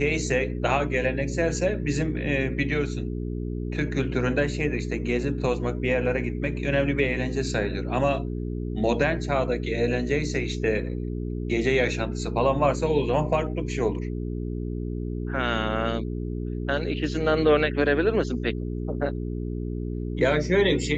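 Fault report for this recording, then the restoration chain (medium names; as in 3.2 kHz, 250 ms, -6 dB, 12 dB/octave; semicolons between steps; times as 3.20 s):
hum 60 Hz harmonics 7 -30 dBFS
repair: de-hum 60 Hz, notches 7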